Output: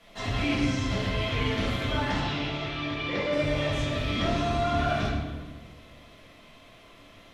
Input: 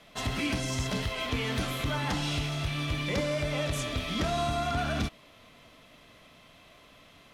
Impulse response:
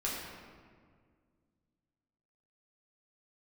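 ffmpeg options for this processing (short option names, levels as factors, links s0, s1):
-filter_complex "[0:a]asettb=1/sr,asplit=3[s0][s1][s2];[s0]atrim=end=2.204[s3];[s1]atrim=start=2.2:end=3.33,asetpts=PTS-STARTPTS,afade=t=in:d=0.004:c=qsin,afade=t=out:st=1.126:d=0.004:c=qsin,acrossover=split=210 5200:gain=0.251 1 0.0631[s4][s5][s6];[s4][s5][s6]amix=inputs=3:normalize=0[s7];[s2]atrim=start=3.326[s8];[s3][s7]acrossfade=d=0.004:c1=hsin:c2=qsin[s9];[s9][s8]acrossfade=d=0.004:c1=qsin:c2=hsin,acrossover=split=5700[s10][s11];[s11]acompressor=threshold=0.00112:ratio=4:attack=1:release=60[s12];[s10][s12]amix=inputs=2:normalize=0[s13];[1:a]atrim=start_sample=2205,asetrate=66150,aresample=44100[s14];[s13][s14]afir=irnorm=-1:irlink=0,volume=1.19"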